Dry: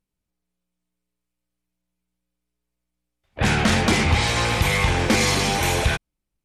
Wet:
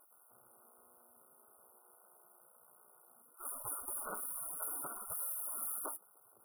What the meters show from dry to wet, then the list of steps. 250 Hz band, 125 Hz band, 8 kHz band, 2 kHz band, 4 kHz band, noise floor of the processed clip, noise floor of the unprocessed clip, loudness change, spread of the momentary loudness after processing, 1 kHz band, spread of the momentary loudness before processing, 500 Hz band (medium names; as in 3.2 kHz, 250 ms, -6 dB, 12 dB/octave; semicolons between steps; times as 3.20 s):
-37.0 dB, under -40 dB, -13.0 dB, -34.5 dB, under -40 dB, -66 dBFS, -82 dBFS, -19.5 dB, 6 LU, -24.0 dB, 4 LU, -28.5 dB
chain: power-law waveshaper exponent 0.5; spectral gate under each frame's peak -25 dB weak; brick-wall FIR band-stop 1.5–9.2 kHz; trim -6.5 dB